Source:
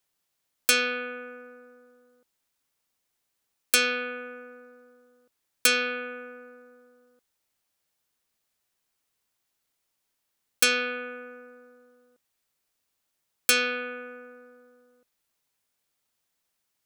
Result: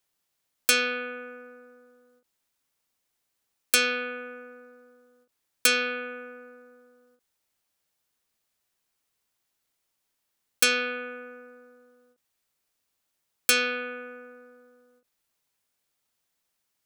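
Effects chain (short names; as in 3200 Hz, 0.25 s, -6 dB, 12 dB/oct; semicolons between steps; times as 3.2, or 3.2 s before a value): ending taper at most 230 dB/s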